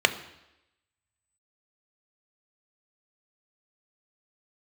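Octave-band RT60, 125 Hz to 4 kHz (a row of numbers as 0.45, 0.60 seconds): 0.80, 0.90, 0.90, 0.90, 0.90, 0.90 seconds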